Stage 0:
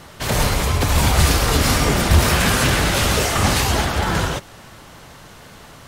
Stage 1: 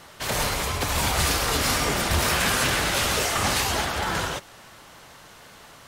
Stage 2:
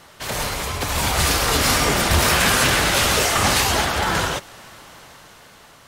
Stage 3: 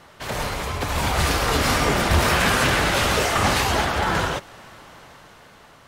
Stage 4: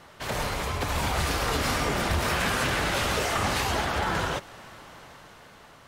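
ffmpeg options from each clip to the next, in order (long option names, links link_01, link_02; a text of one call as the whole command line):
ffmpeg -i in.wav -af "lowshelf=frequency=330:gain=-9,volume=-3.5dB" out.wav
ffmpeg -i in.wav -af "dynaudnorm=framelen=250:gausssize=9:maxgain=6dB" out.wav
ffmpeg -i in.wav -af "highshelf=frequency=3700:gain=-9" out.wav
ffmpeg -i in.wav -af "acompressor=threshold=-22dB:ratio=3,volume=-2dB" out.wav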